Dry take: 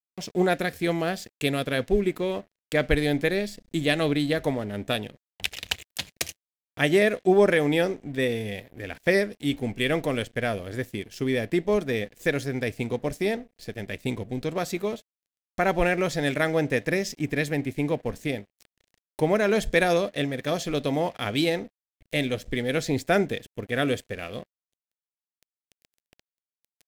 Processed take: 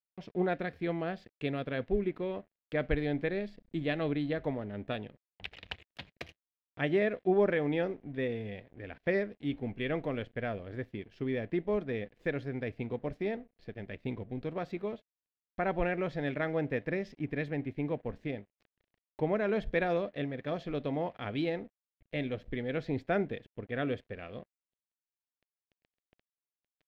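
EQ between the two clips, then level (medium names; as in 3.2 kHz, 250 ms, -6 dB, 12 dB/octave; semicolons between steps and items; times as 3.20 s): distance through air 360 m; -7.0 dB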